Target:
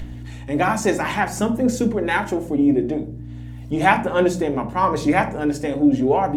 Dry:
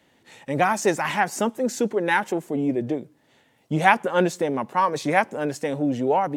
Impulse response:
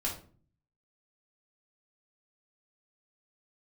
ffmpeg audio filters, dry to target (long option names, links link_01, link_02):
-filter_complex "[0:a]acompressor=mode=upward:threshold=-42dB:ratio=2.5,aeval=exprs='val(0)+0.0141*(sin(2*PI*60*n/s)+sin(2*PI*2*60*n/s)/2+sin(2*PI*3*60*n/s)/3+sin(2*PI*4*60*n/s)/4+sin(2*PI*5*60*n/s)/5)':channel_layout=same,aphaser=in_gain=1:out_gain=1:delay=3.9:decay=0.26:speed=0.61:type=sinusoidal,asplit=2[link_01][link_02];[1:a]atrim=start_sample=2205,lowshelf=frequency=290:gain=12[link_03];[link_02][link_03]afir=irnorm=-1:irlink=0,volume=-7.5dB[link_04];[link_01][link_04]amix=inputs=2:normalize=0,volume=-2.5dB"